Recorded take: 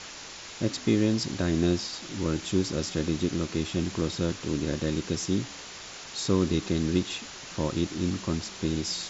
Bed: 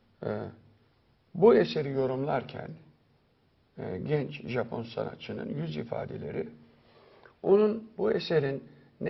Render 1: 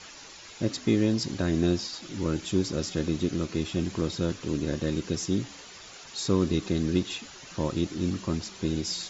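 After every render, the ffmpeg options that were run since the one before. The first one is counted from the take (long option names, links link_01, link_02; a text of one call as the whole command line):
ffmpeg -i in.wav -af "afftdn=noise_reduction=8:noise_floor=-43" out.wav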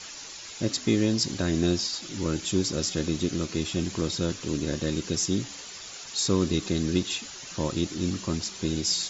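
ffmpeg -i in.wav -af "highshelf=frequency=4200:gain=10.5" out.wav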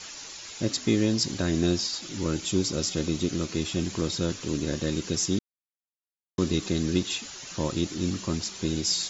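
ffmpeg -i in.wav -filter_complex "[0:a]asettb=1/sr,asplit=3[link_01][link_02][link_03];[link_01]atrim=end=2.384[link_04];[link_02]atrim=start=2.38:end=3.29,asetpts=PTS-STARTPTS,afade=type=in:duration=0.004:curve=qsin,afade=type=out:start_time=0.906:duration=0.004:curve=qsin,bandreject=frequency=1700:width=11[link_05];[link_03]atrim=start=3.286[link_06];[link_04][link_05]acrossfade=duration=0.004:curve1=hsin:curve2=qsin[link_07];[link_07][link_06]acrossfade=duration=0.004:curve1=qsin:curve2=hsin,asplit=3[link_08][link_09][link_10];[link_08]atrim=end=5.39,asetpts=PTS-STARTPTS,afade=type=out:start_time=5.386:duration=0.004:curve=hsin[link_11];[link_09]atrim=start=5.39:end=6.38,asetpts=PTS-STARTPTS,volume=0[link_12];[link_10]atrim=start=6.38,asetpts=PTS-STARTPTS,afade=type=in:duration=0.004:curve=hsin[link_13];[link_11][link_12][link_13]concat=n=3:v=0:a=1" out.wav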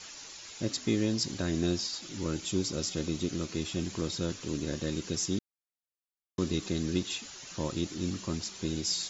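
ffmpeg -i in.wav -af "volume=-5dB" out.wav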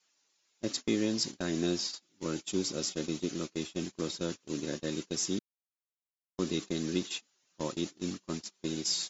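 ffmpeg -i in.wav -af "highpass=190,agate=range=-28dB:threshold=-35dB:ratio=16:detection=peak" out.wav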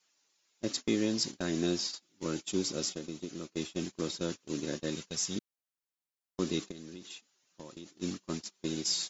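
ffmpeg -i in.wav -filter_complex "[0:a]asettb=1/sr,asplit=3[link_01][link_02][link_03];[link_01]atrim=end=2.934[link_04];[link_02]atrim=start=2.93:end=3.57,asetpts=PTS-STARTPTS,afade=type=in:duration=0.004:curve=qsin,afade=type=out:start_time=0.636:duration=0.004:curve=qsin,acrossover=split=1400|6600[link_05][link_06][link_07];[link_05]acompressor=threshold=-37dB:ratio=4[link_08];[link_06]acompressor=threshold=-54dB:ratio=4[link_09];[link_07]acompressor=threshold=-60dB:ratio=4[link_10];[link_08][link_09][link_10]amix=inputs=3:normalize=0[link_11];[link_03]atrim=start=3.566[link_12];[link_04][link_11]acrossfade=duration=0.004:curve1=hsin:curve2=qsin[link_13];[link_13][link_12]acrossfade=duration=0.004:curve1=qsin:curve2=hsin,asettb=1/sr,asplit=3[link_14][link_15][link_16];[link_14]atrim=end=4.954[link_17];[link_15]atrim=start=4.95:end=5.36,asetpts=PTS-STARTPTS,afade=type=in:duration=0.004:curve=qsin,afade=type=out:start_time=0.406:duration=0.004:curve=qsin,equalizer=frequency=320:width_type=o:width=0.77:gain=-13[link_18];[link_16]atrim=start=5.356[link_19];[link_17][link_18]acrossfade=duration=0.004:curve1=hsin:curve2=qsin[link_20];[link_20][link_19]acrossfade=duration=0.004:curve1=qsin:curve2=hsin,asplit=3[link_21][link_22][link_23];[link_21]afade=type=out:start_time=6.7:duration=0.02[link_24];[link_22]acompressor=threshold=-43dB:ratio=6:attack=3.2:release=140:knee=1:detection=peak,afade=type=in:start_time=6.7:duration=0.02,afade=type=out:start_time=8.01:duration=0.02[link_25];[link_23]afade=type=in:start_time=8.01:duration=0.02[link_26];[link_24][link_25][link_26]amix=inputs=3:normalize=0" out.wav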